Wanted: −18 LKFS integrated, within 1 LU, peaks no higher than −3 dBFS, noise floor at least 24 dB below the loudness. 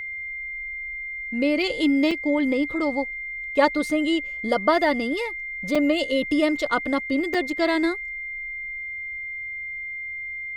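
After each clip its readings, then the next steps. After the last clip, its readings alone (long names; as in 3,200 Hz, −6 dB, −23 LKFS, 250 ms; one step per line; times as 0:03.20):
number of dropouts 3; longest dropout 4.4 ms; interfering tone 2,100 Hz; level of the tone −30 dBFS; integrated loudness −24.5 LKFS; sample peak −6.5 dBFS; target loudness −18.0 LKFS
→ repair the gap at 0:02.11/0:05.75/0:07.34, 4.4 ms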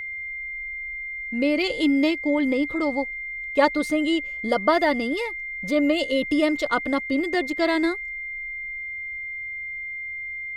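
number of dropouts 0; interfering tone 2,100 Hz; level of the tone −30 dBFS
→ notch filter 2,100 Hz, Q 30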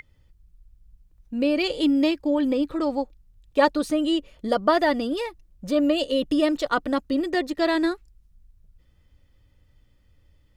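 interfering tone none found; integrated loudness −24.0 LKFS; sample peak −6.0 dBFS; target loudness −18.0 LKFS
→ level +6 dB
brickwall limiter −3 dBFS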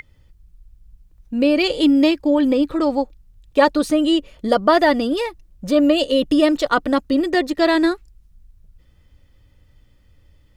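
integrated loudness −18.0 LKFS; sample peak −3.0 dBFS; background noise floor −55 dBFS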